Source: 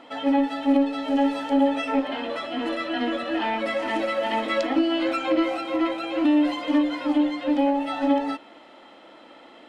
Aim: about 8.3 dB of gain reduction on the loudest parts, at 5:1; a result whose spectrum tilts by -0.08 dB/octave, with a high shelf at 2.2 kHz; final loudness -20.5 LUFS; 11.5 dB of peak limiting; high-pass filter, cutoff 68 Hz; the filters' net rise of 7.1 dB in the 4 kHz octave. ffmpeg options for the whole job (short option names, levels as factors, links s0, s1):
-af "highpass=68,highshelf=f=2200:g=3.5,equalizer=f=4000:t=o:g=6.5,acompressor=threshold=0.0562:ratio=5,volume=3.98,alimiter=limit=0.224:level=0:latency=1"